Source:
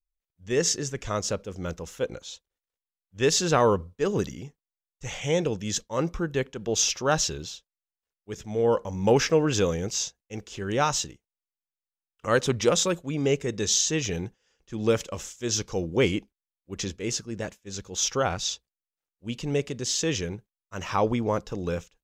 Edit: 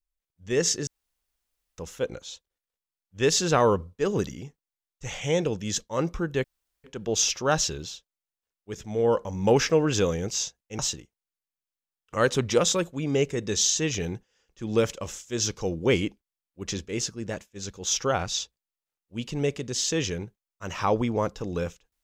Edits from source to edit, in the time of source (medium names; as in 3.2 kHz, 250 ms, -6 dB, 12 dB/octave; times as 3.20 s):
0.87–1.78 s: room tone
6.44 s: insert room tone 0.40 s
10.39–10.90 s: delete